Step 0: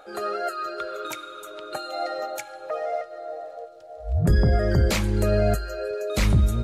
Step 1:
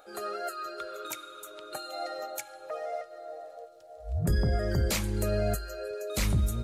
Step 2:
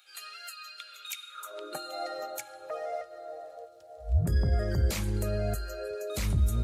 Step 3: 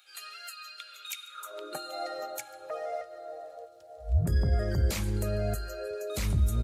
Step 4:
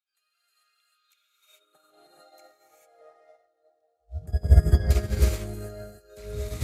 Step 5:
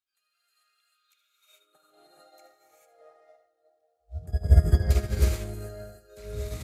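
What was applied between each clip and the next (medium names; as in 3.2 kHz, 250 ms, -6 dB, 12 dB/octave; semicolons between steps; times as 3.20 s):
treble shelf 6.5 kHz +12 dB; trim -7.5 dB
peak limiter -23.5 dBFS, peak gain reduction 7 dB; high-pass sweep 2.7 kHz -> 64 Hz, 1.27–1.94 s
delay 144 ms -24 dB
gated-style reverb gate 470 ms rising, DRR -7 dB; upward expansion 2.5:1, over -36 dBFS; trim +2.5 dB
delay 75 ms -13 dB; trim -1.5 dB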